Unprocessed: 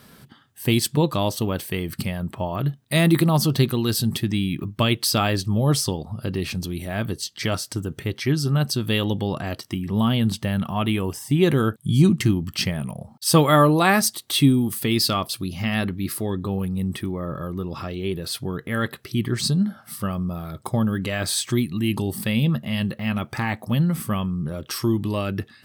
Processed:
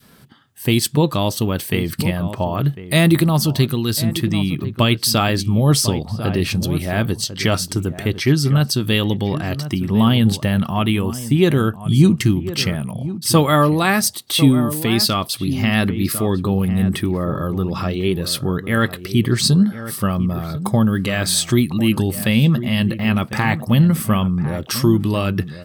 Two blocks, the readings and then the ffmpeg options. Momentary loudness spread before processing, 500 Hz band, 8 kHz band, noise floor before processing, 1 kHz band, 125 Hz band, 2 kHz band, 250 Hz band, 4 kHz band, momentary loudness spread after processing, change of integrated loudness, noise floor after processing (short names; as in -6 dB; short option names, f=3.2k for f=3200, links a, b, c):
11 LU, +4.0 dB, +5.0 dB, -52 dBFS, +3.0 dB, +5.5 dB, +4.5 dB, +5.0 dB, +5.0 dB, 7 LU, +5.0 dB, -36 dBFS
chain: -filter_complex "[0:a]adynamicequalizer=threshold=0.0251:dfrequency=690:dqfactor=0.7:tfrequency=690:tqfactor=0.7:attack=5:release=100:ratio=0.375:range=2.5:mode=cutabove:tftype=bell,asplit=2[a][b];[b]adelay=1050,volume=-12dB,highshelf=f=4k:g=-23.6[c];[a][c]amix=inputs=2:normalize=0,dynaudnorm=f=130:g=9:m=8dB"